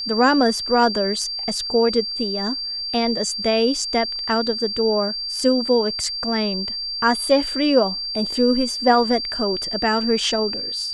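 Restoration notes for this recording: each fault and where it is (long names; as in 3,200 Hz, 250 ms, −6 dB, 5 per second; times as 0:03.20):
whistle 4,700 Hz −25 dBFS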